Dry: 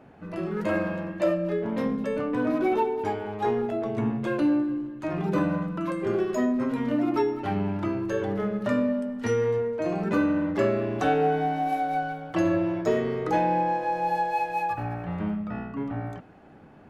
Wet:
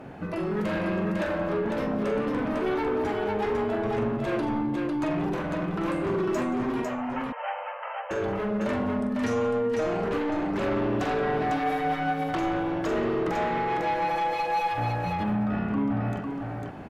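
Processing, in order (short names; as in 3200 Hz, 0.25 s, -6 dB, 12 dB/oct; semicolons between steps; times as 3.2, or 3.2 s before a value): limiter -19.5 dBFS, peak gain reduction 6.5 dB; sine folder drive 5 dB, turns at -19.5 dBFS; compressor, threshold -28 dBFS, peak gain reduction 7 dB; 6.82–8.11 brick-wall FIR band-pass 470–3200 Hz; tapped delay 43/177/501 ms -8/-19.5/-3.5 dB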